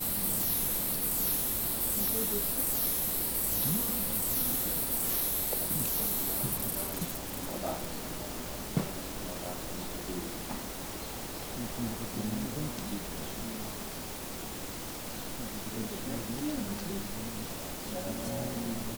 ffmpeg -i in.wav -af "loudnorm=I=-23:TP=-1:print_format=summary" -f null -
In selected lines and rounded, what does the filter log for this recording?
Input Integrated:    -32.1 LUFS
Input True Peak:     -16.0 dBTP
Input LRA:             9.2 LU
Input Threshold:     -42.1 LUFS